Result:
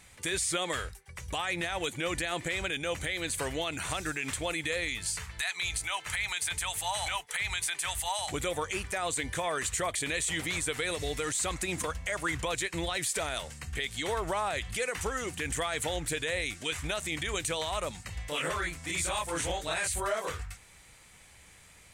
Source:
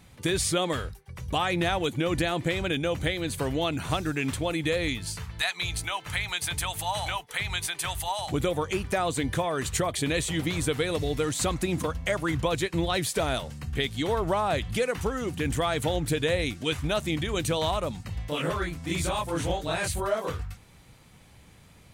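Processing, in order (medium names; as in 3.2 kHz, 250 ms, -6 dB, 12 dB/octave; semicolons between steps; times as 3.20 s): graphic EQ 125/250/2000/8000 Hz -7/-6/+7/+11 dB; peak limiter -18.5 dBFS, peak gain reduction 11 dB; trim -3 dB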